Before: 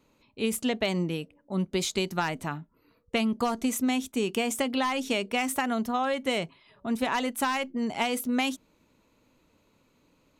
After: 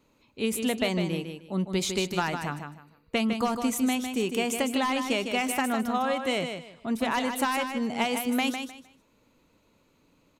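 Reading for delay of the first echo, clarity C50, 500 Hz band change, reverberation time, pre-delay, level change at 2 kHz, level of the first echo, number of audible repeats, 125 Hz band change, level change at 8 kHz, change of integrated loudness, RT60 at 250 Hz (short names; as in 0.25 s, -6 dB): 0.154 s, none, +1.0 dB, none, none, +1.0 dB, -7.0 dB, 3, +1.0 dB, +1.0 dB, +0.5 dB, none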